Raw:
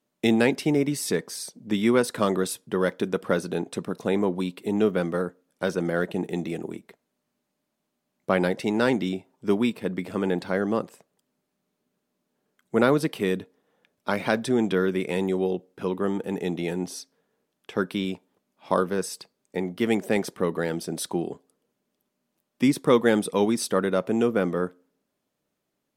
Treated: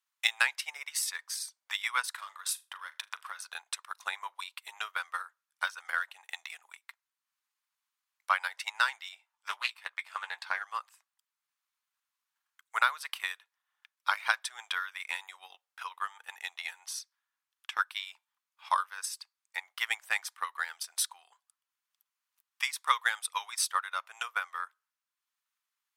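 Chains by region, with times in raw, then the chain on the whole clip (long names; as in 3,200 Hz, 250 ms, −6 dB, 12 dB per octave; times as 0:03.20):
0:02.12–0:03.39: downward compressor 10 to 1, threshold −27 dBFS + flutter between parallel walls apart 6.7 metres, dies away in 0.23 s
0:09.15–0:10.63: high-shelf EQ 9,100 Hz −5 dB + double-tracking delay 17 ms −8 dB + highs frequency-modulated by the lows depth 0.15 ms
whole clip: Butterworth high-pass 1,000 Hz 36 dB per octave; transient designer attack +9 dB, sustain −4 dB; level −4 dB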